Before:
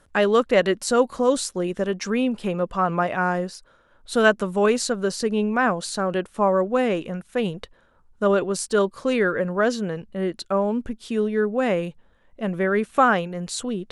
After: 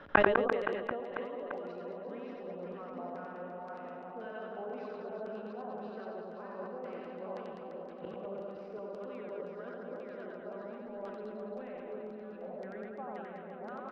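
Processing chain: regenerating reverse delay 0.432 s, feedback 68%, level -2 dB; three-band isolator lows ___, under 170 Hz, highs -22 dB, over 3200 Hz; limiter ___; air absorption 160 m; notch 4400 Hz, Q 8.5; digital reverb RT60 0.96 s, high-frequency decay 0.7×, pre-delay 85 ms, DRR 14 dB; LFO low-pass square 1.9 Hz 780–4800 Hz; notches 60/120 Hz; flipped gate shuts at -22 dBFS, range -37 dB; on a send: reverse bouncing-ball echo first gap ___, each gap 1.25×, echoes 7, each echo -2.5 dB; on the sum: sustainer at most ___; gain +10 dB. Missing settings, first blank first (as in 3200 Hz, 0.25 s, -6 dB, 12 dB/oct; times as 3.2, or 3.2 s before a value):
-13 dB, -10.5 dBFS, 90 ms, 53 dB/s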